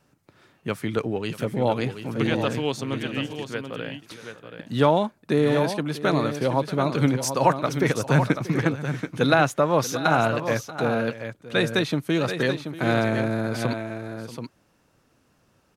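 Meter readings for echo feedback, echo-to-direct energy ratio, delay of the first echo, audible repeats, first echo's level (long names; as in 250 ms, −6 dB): repeats not evenly spaced, −8.0 dB, 635 ms, 2, −16.5 dB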